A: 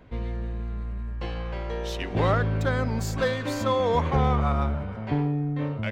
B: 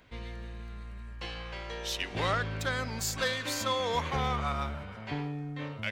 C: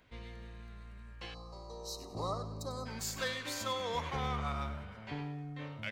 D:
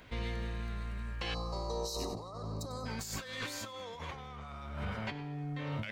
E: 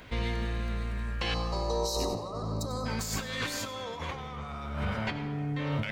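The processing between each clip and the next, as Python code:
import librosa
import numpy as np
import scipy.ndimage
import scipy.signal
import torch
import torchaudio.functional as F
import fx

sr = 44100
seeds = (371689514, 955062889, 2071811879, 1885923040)

y1 = fx.tilt_shelf(x, sr, db=-8.5, hz=1400.0)
y1 = y1 * 10.0 ** (-2.5 / 20.0)
y2 = fx.echo_feedback(y1, sr, ms=97, feedback_pct=34, wet_db=-13.0)
y2 = fx.spec_box(y2, sr, start_s=1.34, length_s=1.52, low_hz=1300.0, high_hz=3800.0, gain_db=-27)
y2 = y2 * 10.0 ** (-6.0 / 20.0)
y3 = fx.over_compress(y2, sr, threshold_db=-46.0, ratio=-1.0)
y3 = y3 * 10.0 ** (6.0 / 20.0)
y4 = fx.rev_freeverb(y3, sr, rt60_s=2.5, hf_ratio=0.35, predelay_ms=50, drr_db=10.5)
y4 = y4 * 10.0 ** (6.0 / 20.0)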